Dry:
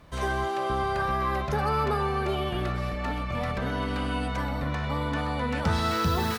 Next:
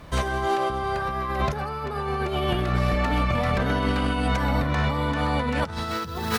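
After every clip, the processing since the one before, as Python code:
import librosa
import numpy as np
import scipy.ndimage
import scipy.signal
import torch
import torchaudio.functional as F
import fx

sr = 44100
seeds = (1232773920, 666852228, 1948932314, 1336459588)

y = fx.over_compress(x, sr, threshold_db=-30.0, ratio=-0.5)
y = y * librosa.db_to_amplitude(6.0)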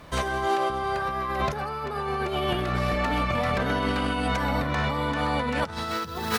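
y = fx.low_shelf(x, sr, hz=170.0, db=-7.0)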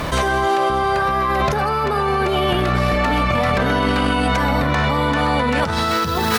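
y = fx.env_flatten(x, sr, amount_pct=70)
y = y * librosa.db_to_amplitude(5.5)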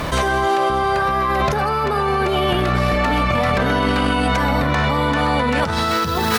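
y = x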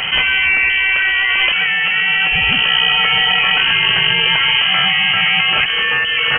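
y = fx.freq_invert(x, sr, carrier_hz=3100)
y = y * librosa.db_to_amplitude(3.5)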